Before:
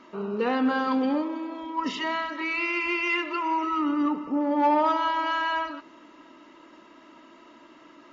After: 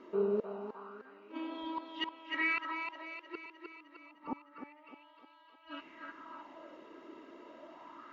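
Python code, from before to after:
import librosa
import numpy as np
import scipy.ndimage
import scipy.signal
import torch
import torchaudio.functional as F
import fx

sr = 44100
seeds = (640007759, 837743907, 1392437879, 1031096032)

y = fx.high_shelf(x, sr, hz=5600.0, db=-10.0)
y = fx.gate_flip(y, sr, shuts_db=-21.0, range_db=-33)
y = fx.echo_thinned(y, sr, ms=306, feedback_pct=62, hz=320.0, wet_db=-4.0)
y = fx.bell_lfo(y, sr, hz=0.28, low_hz=410.0, high_hz=3700.0, db=13)
y = y * librosa.db_to_amplitude(-7.0)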